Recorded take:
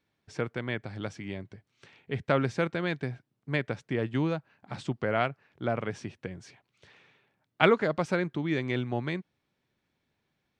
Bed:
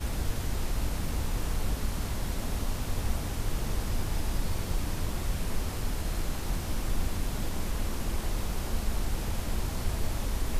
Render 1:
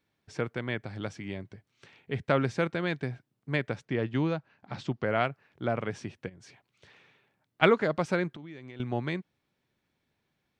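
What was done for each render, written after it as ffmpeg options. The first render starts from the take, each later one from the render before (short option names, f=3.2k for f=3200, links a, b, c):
-filter_complex "[0:a]asettb=1/sr,asplit=3[a][b][c];[a]atrim=end=3.854[d];[b]atrim=start=3.85:end=5.05,asetpts=PTS-STARTPTS,afade=t=in:d=0.004:c=qsin,afade=t=out:st=1.196:d=0.004:c=qsin,lowpass=f=6.6k:w=0.5412,lowpass=f=6.6k:w=1.3066[e];[c]atrim=start=5.046[f];[d][e]acrossfade=d=0.004:c1=hsin:c2=qsin[g];[g][f]acrossfade=d=0.004:c1=qsin:c2=hsin,asplit=3[h][i][j];[h]afade=t=out:st=6.28:d=0.02[k];[i]acompressor=threshold=-48dB:ratio=10:attack=3.2:release=140:knee=1:detection=peak,afade=t=in:st=6.28:d=0.02,afade=t=out:st=7.61:d=0.02[l];[j]afade=t=in:st=7.61:d=0.02[m];[k][l][m]amix=inputs=3:normalize=0,asettb=1/sr,asplit=3[n][o][p];[n]atrim=end=8.304[q];[o]atrim=start=8.3:end=8.8,asetpts=PTS-STARTPTS,afade=t=in:d=0.004:c=qsin,afade=t=out:st=0.496:d=0.004:c=qsin,acompressor=threshold=-42dB:ratio=6:attack=3.2:release=140:knee=1:detection=peak[r];[p]atrim=start=8.796[s];[q][r]acrossfade=d=0.004:c1=hsin:c2=qsin[t];[t][s]acrossfade=d=0.004:c1=qsin:c2=hsin"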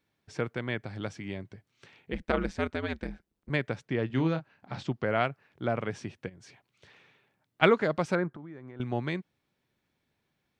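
-filter_complex "[0:a]asettb=1/sr,asplit=3[a][b][c];[a]atrim=end=2.124[d];[b]atrim=start=2.12:end=3.5,asetpts=PTS-STARTPTS,afade=t=in:d=0.004:c=qsin,afade=t=out:st=1.376:d=0.004:c=qsin,aeval=exprs='val(0)*sin(2*PI*81*n/s)':c=same[e];[c]atrim=start=3.496[f];[d][e]acrossfade=d=0.004:c1=hsin:c2=qsin[g];[g][f]acrossfade=d=0.004:c1=qsin:c2=hsin,asettb=1/sr,asplit=3[h][i][j];[h]atrim=end=4.074[k];[i]atrim=start=4.07:end=4.83,asetpts=PTS-STARTPTS,afade=t=in:d=0.004:c=qsin,afade=t=out:st=0.756:d=0.004:c=qsin,asplit=2[l][m];[m]adelay=31,volume=-8.5dB[n];[l][n]amix=inputs=2:normalize=0,atrim=end_sample=33516[o];[j]atrim=start=4.826[p];[k][o]acrossfade=d=0.004:c1=hsin:c2=qsin[q];[q][p]acrossfade=d=0.004:c1=qsin:c2=hsin,asettb=1/sr,asplit=3[r][s][t];[r]atrim=end=8.154[u];[s]atrim=start=8.15:end=8.81,asetpts=PTS-STARTPTS,afade=t=in:d=0.004:c=qsin,afade=t=out:st=0.656:d=0.004:c=qsin,highshelf=f=2k:t=q:w=1.5:g=-12.5[v];[t]atrim=start=8.806[w];[u][v]acrossfade=d=0.004:c1=hsin:c2=qsin[x];[x][w]acrossfade=d=0.004:c1=qsin:c2=hsin"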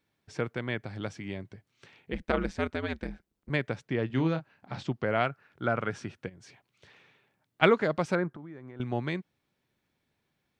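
-filter_complex "[0:a]asettb=1/sr,asplit=3[a][b][c];[a]atrim=end=5.264[d];[b]atrim=start=5.26:end=6.23,asetpts=PTS-STARTPTS,afade=t=in:d=0.004:c=qsin,afade=t=out:st=0.966:d=0.004:c=qsin,equalizer=f=1.4k:t=o:w=0.31:g=10[e];[c]atrim=start=6.226[f];[d][e]acrossfade=d=0.004:c1=hsin:c2=qsin[g];[g][f]acrossfade=d=0.004:c1=qsin:c2=hsin"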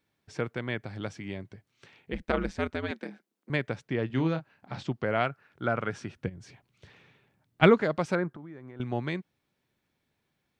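-filter_complex "[0:a]asettb=1/sr,asplit=3[a][b][c];[a]atrim=end=2.914[d];[b]atrim=start=2.91:end=3.5,asetpts=PTS-STARTPTS,afade=t=in:d=0.004:c=qsin,afade=t=out:st=0.586:d=0.004:c=qsin,highpass=f=210:w=0.5412,highpass=f=210:w=1.3066[e];[c]atrim=start=3.496[f];[d][e]acrossfade=d=0.004:c1=hsin:c2=qsin[g];[g][f]acrossfade=d=0.004:c1=qsin:c2=hsin,asettb=1/sr,asplit=3[h][i][j];[h]atrim=end=6.164[k];[i]atrim=start=6.16:end=7.81,asetpts=PTS-STARTPTS,afade=t=in:d=0.004:c=qsin,afade=t=out:st=1.646:d=0.004:c=qsin,lowshelf=f=230:g=11.5[l];[j]atrim=start=7.806[m];[k][l]acrossfade=d=0.004:c1=hsin:c2=qsin[n];[n][m]acrossfade=d=0.004:c1=qsin:c2=hsin"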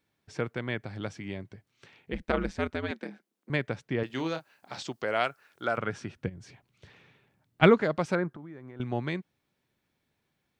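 -filter_complex "[0:a]asettb=1/sr,asplit=3[a][b][c];[a]atrim=end=4.034[d];[b]atrim=start=4.03:end=5.78,asetpts=PTS-STARTPTS,afade=t=in:d=0.004:c=qsin,afade=t=out:st=1.746:d=0.004:c=qsin,bass=f=250:g=-13,treble=f=4k:g=13[e];[c]atrim=start=5.776[f];[d][e]acrossfade=d=0.004:c1=hsin:c2=qsin[g];[g][f]acrossfade=d=0.004:c1=qsin:c2=hsin"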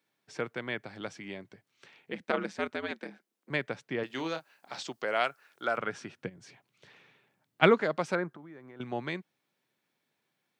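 -af "highpass=f=120:w=0.5412,highpass=f=120:w=1.3066,lowshelf=f=250:g=-9.5"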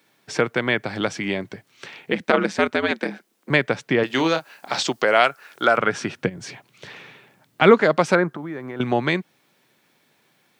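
-filter_complex "[0:a]asplit=2[a][b];[b]acompressor=threshold=-37dB:ratio=6,volume=2.5dB[c];[a][c]amix=inputs=2:normalize=0,alimiter=level_in=10dB:limit=-1dB:release=50:level=0:latency=1"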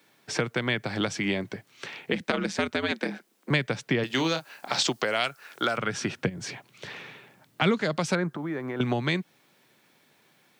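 -filter_complex "[0:a]acrossover=split=190|3000[a][b][c];[b]acompressor=threshold=-26dB:ratio=6[d];[a][d][c]amix=inputs=3:normalize=0"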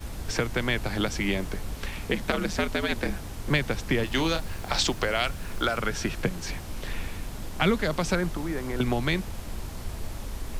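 -filter_complex "[1:a]volume=-4.5dB[a];[0:a][a]amix=inputs=2:normalize=0"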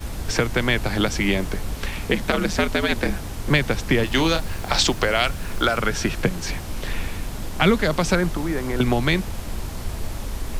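-af "volume=6dB,alimiter=limit=-3dB:level=0:latency=1"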